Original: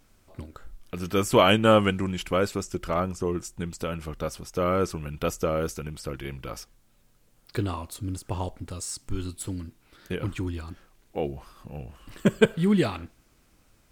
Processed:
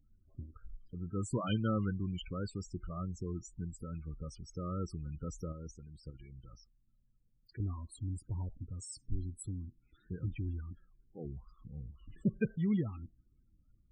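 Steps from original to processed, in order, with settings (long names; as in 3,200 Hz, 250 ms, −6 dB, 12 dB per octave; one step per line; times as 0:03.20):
spectral peaks only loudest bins 16
0:05.52–0:07.60: output level in coarse steps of 11 dB
guitar amp tone stack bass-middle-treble 6-0-2
level +8.5 dB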